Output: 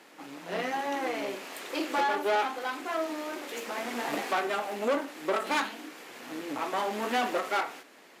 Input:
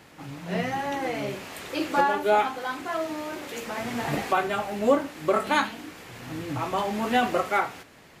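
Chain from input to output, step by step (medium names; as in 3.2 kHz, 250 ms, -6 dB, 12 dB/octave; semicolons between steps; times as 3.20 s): valve stage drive 24 dB, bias 0.65; high-pass 250 Hz 24 dB/octave; endings held to a fixed fall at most 150 dB/s; trim +1.5 dB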